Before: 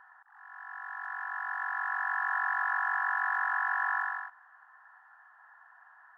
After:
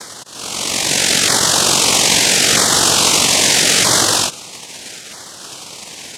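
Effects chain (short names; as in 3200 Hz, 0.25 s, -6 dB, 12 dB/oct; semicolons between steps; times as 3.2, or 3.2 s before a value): noise vocoder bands 1; LFO notch saw down 0.78 Hz 940–2800 Hz; maximiser +26.5 dB; gain -1 dB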